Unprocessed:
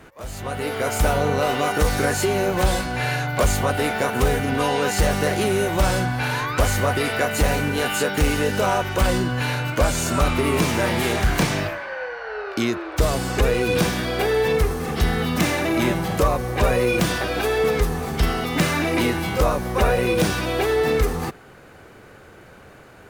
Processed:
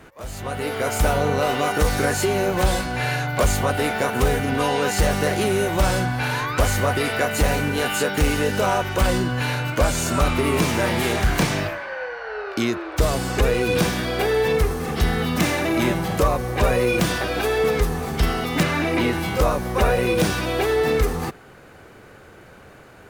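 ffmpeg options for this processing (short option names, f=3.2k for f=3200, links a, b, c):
-filter_complex "[0:a]asettb=1/sr,asplit=3[a][b][c];[a]atrim=end=18.634[d];[b]atrim=start=18.63:end=19.13,asetpts=PTS-STARTPTS,afade=t=in:d=0.004:c=qsin,afade=t=out:st=0.496:d=0.004:c=qsin,acrossover=split=4300[e][f];[f]acompressor=threshold=-41dB:ratio=4:attack=1:release=60[g];[e][g]amix=inputs=2:normalize=0[h];[c]atrim=start=19.126[i];[d][h]acrossfade=d=0.004:c1=hsin:c2=qsin[j];[j][i]acrossfade=d=0.004:c1=qsin:c2=hsin"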